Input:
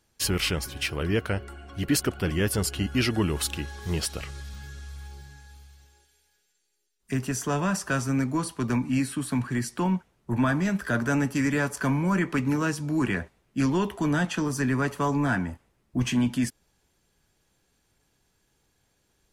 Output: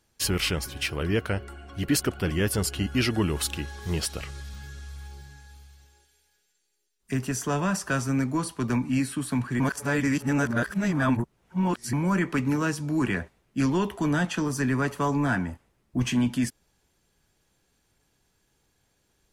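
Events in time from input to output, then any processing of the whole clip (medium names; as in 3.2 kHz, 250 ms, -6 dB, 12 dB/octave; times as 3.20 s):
9.60–11.93 s: reverse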